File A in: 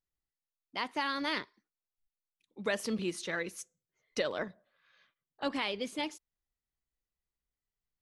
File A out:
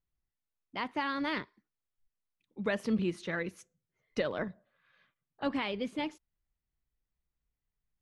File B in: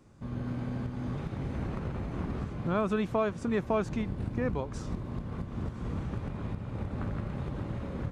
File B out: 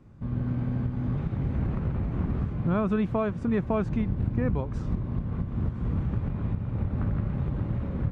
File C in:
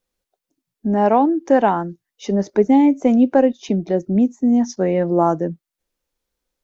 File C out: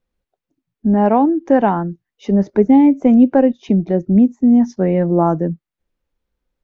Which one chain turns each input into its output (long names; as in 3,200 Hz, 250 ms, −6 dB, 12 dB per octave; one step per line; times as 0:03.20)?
bass and treble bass +8 dB, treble −12 dB